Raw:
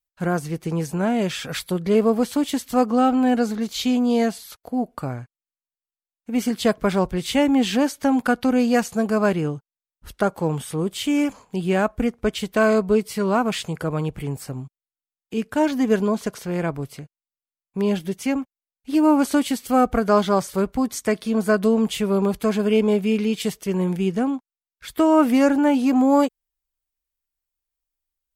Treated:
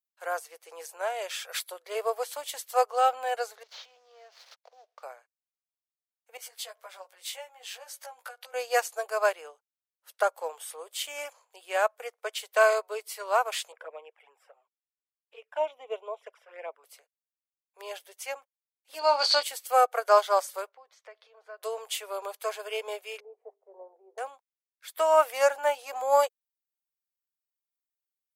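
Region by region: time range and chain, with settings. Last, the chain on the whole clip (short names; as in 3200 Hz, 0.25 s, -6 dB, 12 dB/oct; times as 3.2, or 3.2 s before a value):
3.63–5.03 CVSD 32 kbps + sample leveller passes 1 + compressor 5:1, threshold -34 dBFS
6.37–8.54 compressor 4:1, threshold -30 dBFS + bell 350 Hz -9 dB 0.86 oct + doubler 16 ms -2 dB
13.72–16.84 polynomial smoothing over 25 samples + envelope flanger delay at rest 5.5 ms, full sweep at -19.5 dBFS
18.99–19.43 synth low-pass 4500 Hz, resonance Q 14 + doubler 24 ms -9.5 dB
20.69–21.63 compressor 3:1, threshold -31 dBFS + air absorption 230 m
23.2–24.18 elliptic band-pass 150–780 Hz, stop band 60 dB + notches 50/100/150/200/250/300/350/400 Hz
whole clip: steep high-pass 500 Hz 48 dB/oct; high shelf 8000 Hz +8 dB; upward expander 1.5:1, over -43 dBFS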